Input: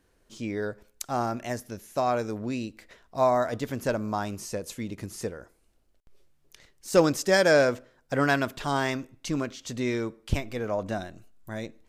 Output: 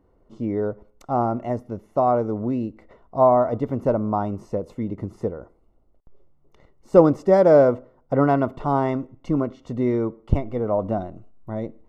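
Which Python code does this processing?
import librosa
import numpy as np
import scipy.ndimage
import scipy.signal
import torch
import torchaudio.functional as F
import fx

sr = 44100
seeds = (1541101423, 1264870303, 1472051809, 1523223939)

y = scipy.signal.savgol_filter(x, 65, 4, mode='constant')
y = y * 10.0 ** (7.0 / 20.0)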